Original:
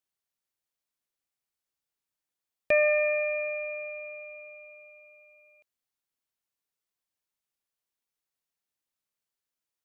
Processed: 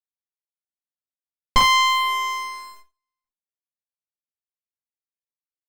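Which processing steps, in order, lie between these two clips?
running median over 25 samples
noise gate −54 dBFS, range −25 dB
low-pass filter 1,800 Hz 6 dB per octave
low-shelf EQ 320 Hz +4.5 dB
leveller curve on the samples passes 3
single-tap delay 82 ms −4.5 dB
feedback delay network reverb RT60 0.46 s, low-frequency decay 0.8×, high-frequency decay 0.95×, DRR −5 dB
wrong playback speed 45 rpm record played at 78 rpm
windowed peak hold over 17 samples
level +7.5 dB

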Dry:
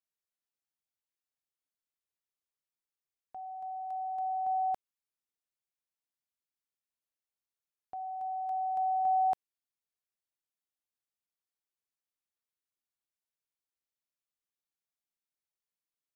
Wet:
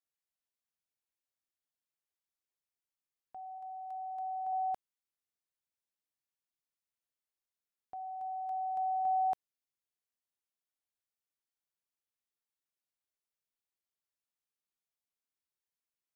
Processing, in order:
0:03.58–0:04.53: low-shelf EQ 310 Hz −11 dB
level −3 dB

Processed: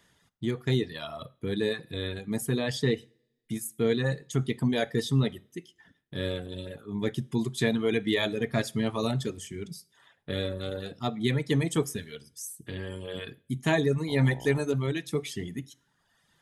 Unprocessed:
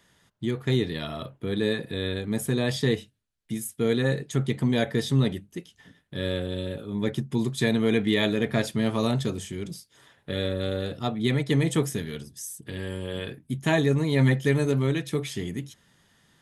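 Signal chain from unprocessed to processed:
reverb reduction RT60 1.2 s
coupled-rooms reverb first 0.42 s, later 1.5 s, from −25 dB, DRR 17.5 dB
0:14.07–0:14.60: hum with harmonics 60 Hz, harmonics 16, −44 dBFS 0 dB per octave
level −1.5 dB

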